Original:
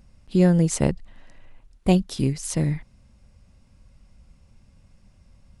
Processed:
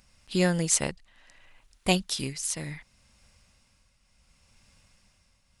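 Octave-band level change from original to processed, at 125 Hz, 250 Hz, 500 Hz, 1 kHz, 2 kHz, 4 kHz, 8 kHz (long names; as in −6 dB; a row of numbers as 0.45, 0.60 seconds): −10.5, −9.0, −5.5, −1.5, +4.5, +5.5, +4.0 decibels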